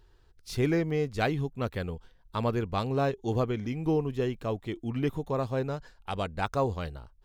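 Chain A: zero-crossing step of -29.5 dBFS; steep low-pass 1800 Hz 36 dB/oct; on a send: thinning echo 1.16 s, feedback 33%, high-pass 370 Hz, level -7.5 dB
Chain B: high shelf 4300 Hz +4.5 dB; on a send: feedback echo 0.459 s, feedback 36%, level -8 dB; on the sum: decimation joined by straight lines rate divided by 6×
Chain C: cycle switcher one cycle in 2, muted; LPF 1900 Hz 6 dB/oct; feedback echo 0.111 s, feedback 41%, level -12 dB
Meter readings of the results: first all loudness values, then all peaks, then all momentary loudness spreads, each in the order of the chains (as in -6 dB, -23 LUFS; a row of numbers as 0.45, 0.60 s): -28.0, -30.5, -33.5 LUFS; -14.5, -12.5, -15.0 dBFS; 8, 7, 11 LU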